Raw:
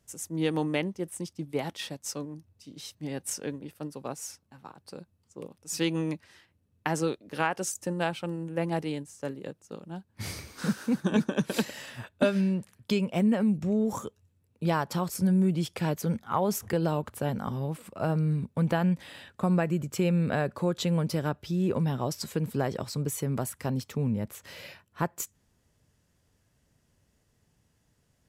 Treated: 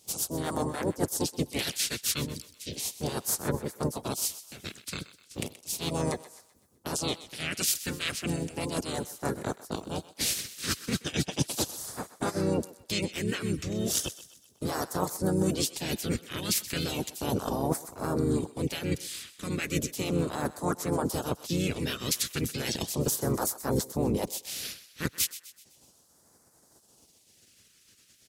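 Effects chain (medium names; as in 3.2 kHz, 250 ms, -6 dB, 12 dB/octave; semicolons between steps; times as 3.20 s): spectral peaks clipped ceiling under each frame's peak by 25 dB; reverb removal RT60 0.67 s; high-pass 86 Hz 12 dB/octave; reverse; compression 20:1, threshold -34 dBFS, peak gain reduction 17.5 dB; reverse; harmony voices -12 st -7 dB, -3 st -3 dB; phase shifter stages 2, 0.35 Hz, lowest notch 780–2700 Hz; thinning echo 127 ms, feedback 47%, high-pass 610 Hz, level -15 dB; trim +9 dB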